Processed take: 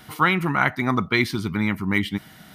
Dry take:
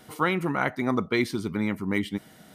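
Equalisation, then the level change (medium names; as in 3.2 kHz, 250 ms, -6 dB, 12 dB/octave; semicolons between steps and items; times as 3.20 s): graphic EQ 250/500/8000 Hz -4/-11/-7 dB; +8.5 dB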